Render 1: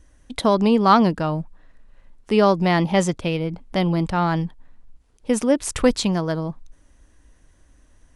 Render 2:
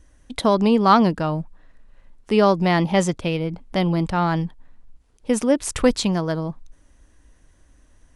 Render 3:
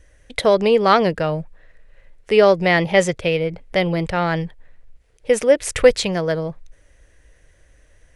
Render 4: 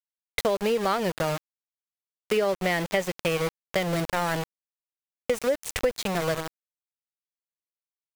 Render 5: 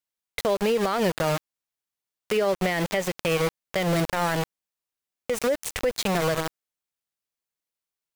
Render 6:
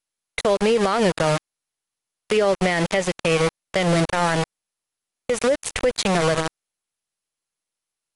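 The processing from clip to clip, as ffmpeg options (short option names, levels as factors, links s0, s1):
-af anull
-af "equalizer=f=125:t=o:w=1:g=3,equalizer=f=250:t=o:w=1:g=-11,equalizer=f=500:t=o:w=1:g=10,equalizer=f=1000:t=o:w=1:g=-7,equalizer=f=2000:t=o:w=1:g=9,volume=1.12"
-af "aeval=exprs='val(0)*gte(abs(val(0)),0.0944)':c=same,acompressor=threshold=0.1:ratio=5,volume=0.794"
-af "alimiter=limit=0.0891:level=0:latency=1:release=80,volume=1.88"
-af "volume=1.68" -ar 44100 -c:a mp2 -b:a 64k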